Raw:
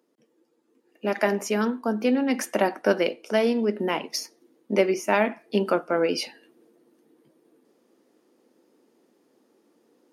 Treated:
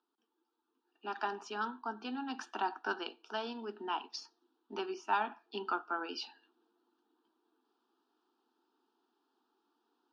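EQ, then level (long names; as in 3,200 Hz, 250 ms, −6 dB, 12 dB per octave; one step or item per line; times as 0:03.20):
loudspeaker in its box 290–3,800 Hz, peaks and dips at 320 Hz −3 dB, 510 Hz −6 dB, 1,100 Hz −9 dB, 2,000 Hz −10 dB
low shelf with overshoot 760 Hz −10 dB, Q 1.5
phaser with its sweep stopped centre 570 Hz, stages 6
0.0 dB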